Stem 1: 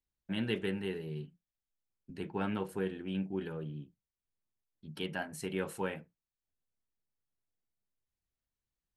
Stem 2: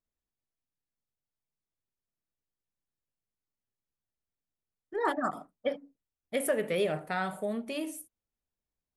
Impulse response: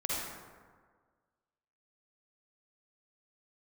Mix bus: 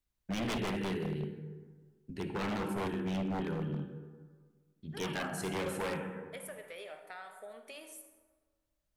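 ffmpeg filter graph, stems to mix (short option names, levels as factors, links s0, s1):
-filter_complex "[0:a]lowshelf=f=120:g=4.5,volume=0.944,asplit=2[s0][s1];[s1]volume=0.447[s2];[1:a]highpass=680,acompressor=threshold=0.00631:ratio=3,volume=0.562,asplit=2[s3][s4];[s4]volume=0.266[s5];[2:a]atrim=start_sample=2205[s6];[s2][s5]amix=inputs=2:normalize=0[s7];[s7][s6]afir=irnorm=-1:irlink=0[s8];[s0][s3][s8]amix=inputs=3:normalize=0,aeval=exprs='0.0355*(abs(mod(val(0)/0.0355+3,4)-2)-1)':c=same"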